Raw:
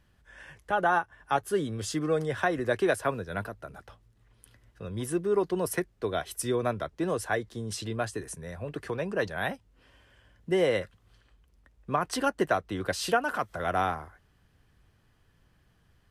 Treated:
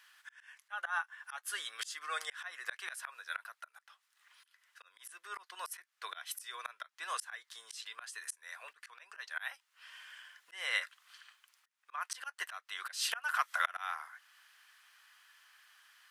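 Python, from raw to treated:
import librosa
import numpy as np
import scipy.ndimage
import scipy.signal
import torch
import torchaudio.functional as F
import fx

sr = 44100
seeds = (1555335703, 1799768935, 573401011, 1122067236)

y = scipy.signal.sosfilt(scipy.signal.butter(4, 1200.0, 'highpass', fs=sr, output='sos'), x)
y = fx.auto_swell(y, sr, attack_ms=608.0)
y = y * 10.0 ** (11.5 / 20.0)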